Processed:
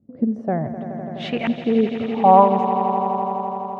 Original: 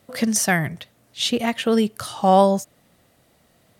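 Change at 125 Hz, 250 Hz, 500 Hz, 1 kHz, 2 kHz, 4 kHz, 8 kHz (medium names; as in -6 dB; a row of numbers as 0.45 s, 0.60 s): -0.5 dB, +1.5 dB, +1.5 dB, +6.0 dB, -8.5 dB, -10.5 dB, under -30 dB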